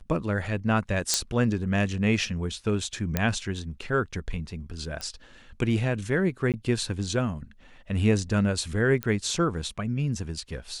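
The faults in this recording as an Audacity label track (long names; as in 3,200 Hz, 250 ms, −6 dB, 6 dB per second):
1.140000	1.140000	click −6 dBFS
3.170000	3.170000	click −9 dBFS
5.010000	5.010000	click −19 dBFS
6.520000	6.540000	drop-out 18 ms
9.030000	9.030000	click −14 dBFS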